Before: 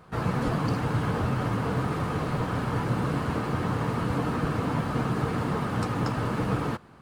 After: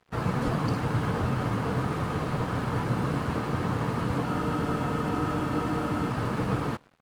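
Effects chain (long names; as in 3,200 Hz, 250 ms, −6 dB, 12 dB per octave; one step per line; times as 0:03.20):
single-tap delay 127 ms −22.5 dB
dead-zone distortion −48 dBFS
frozen spectrum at 0:04.28, 1.82 s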